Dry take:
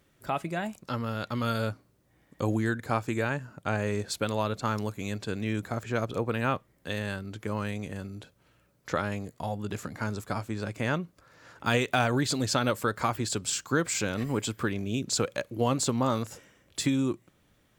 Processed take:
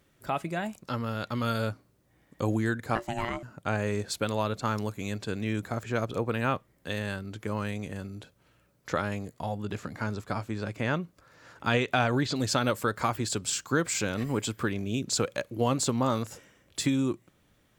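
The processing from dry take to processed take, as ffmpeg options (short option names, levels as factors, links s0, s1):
-filter_complex "[0:a]asettb=1/sr,asplit=3[s0][s1][s2];[s0]atrim=end=2.954[s3];[s1]atrim=start=2.95:end=3.43,asetpts=PTS-STARTPTS,afade=t=in:d=0.004:c=qsin,afade=t=out:st=0.476:d=0.004:c=qsin,aeval=exprs='val(0)*sin(2*PI*470*n/s)':c=same[s4];[s2]atrim=start=3.426[s5];[s3][s4]acrossfade=d=0.004:c1=hsin:c2=qsin[s6];[s6][s5]acrossfade=d=0.004:c1=qsin:c2=hsin,asettb=1/sr,asplit=3[s7][s8][s9];[s7]atrim=end=9.344[s10];[s8]atrim=start=9.34:end=12.36,asetpts=PTS-STARTPTS,afade=t=in:d=0.004:c=qsin,afade=t=out:st=3.016:d=0.004:c=qsin,acrossover=split=5600[s11][s12];[s12]acompressor=threshold=0.00126:ratio=4:attack=1:release=60[s13];[s11][s13]amix=inputs=2:normalize=0[s14];[s9]atrim=start=12.356[s15];[s10][s14]acrossfade=d=0.004:c1=hsin:c2=qsin[s16];[s16][s15]acrossfade=d=0.004:c1=qsin:c2=hsin"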